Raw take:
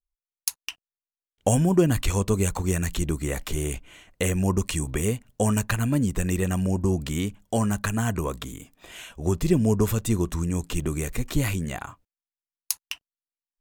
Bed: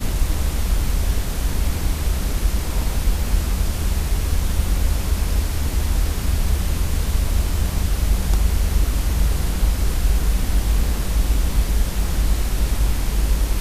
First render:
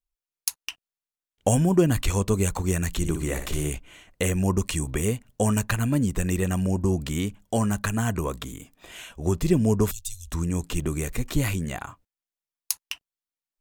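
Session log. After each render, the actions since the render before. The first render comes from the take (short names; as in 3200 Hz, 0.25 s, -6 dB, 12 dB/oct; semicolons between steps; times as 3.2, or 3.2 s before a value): 2.98–3.7 flutter echo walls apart 10.3 m, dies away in 0.47 s; 9.91–10.32 inverse Chebyshev band-stop 180–1200 Hz, stop band 60 dB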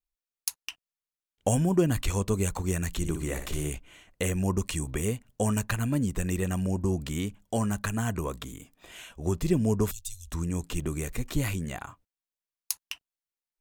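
gain -4 dB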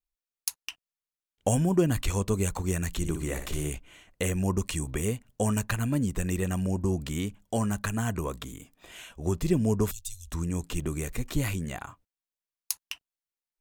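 nothing audible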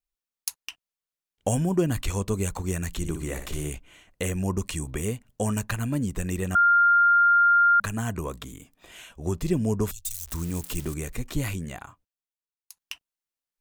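6.55–7.8 bleep 1400 Hz -15 dBFS; 10.05–10.94 switching spikes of -28 dBFS; 11.53–12.77 fade out, to -21 dB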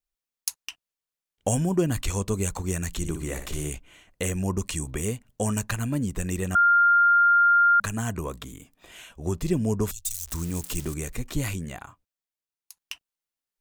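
dynamic EQ 6700 Hz, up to +4 dB, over -43 dBFS, Q 1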